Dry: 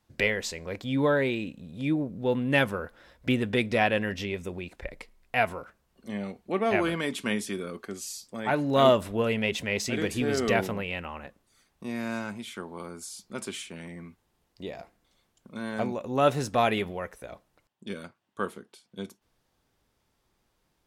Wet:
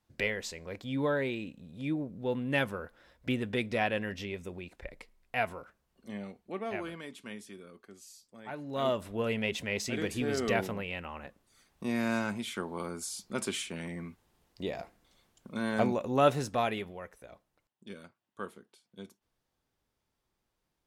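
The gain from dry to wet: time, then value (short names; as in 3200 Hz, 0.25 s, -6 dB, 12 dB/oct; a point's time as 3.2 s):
6.1 s -6 dB
7.14 s -15 dB
8.54 s -15 dB
9.3 s -4.5 dB
11.01 s -4.5 dB
11.85 s +2 dB
15.94 s +2 dB
16.86 s -9 dB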